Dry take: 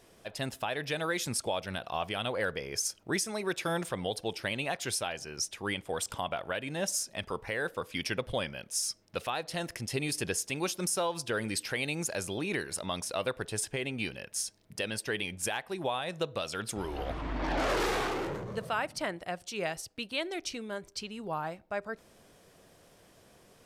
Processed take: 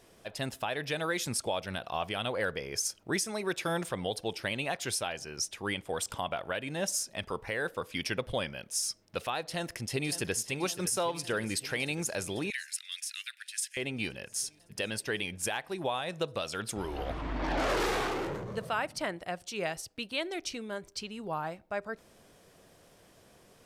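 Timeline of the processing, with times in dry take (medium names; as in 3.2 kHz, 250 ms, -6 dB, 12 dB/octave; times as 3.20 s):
9.39–10.46 s: echo throw 560 ms, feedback 75%, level -13.5 dB
12.50–13.77 s: steep high-pass 1.7 kHz 48 dB/octave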